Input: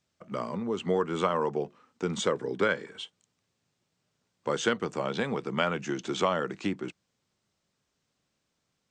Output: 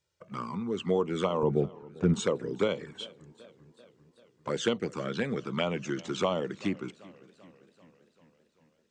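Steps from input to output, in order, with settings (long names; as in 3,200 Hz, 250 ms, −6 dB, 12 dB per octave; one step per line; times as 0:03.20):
flanger swept by the level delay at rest 2.1 ms, full sweep at −23 dBFS
0:01.43–0:02.14: RIAA equalisation playback
feedback echo with a swinging delay time 392 ms, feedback 62%, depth 106 cents, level −22 dB
level +1 dB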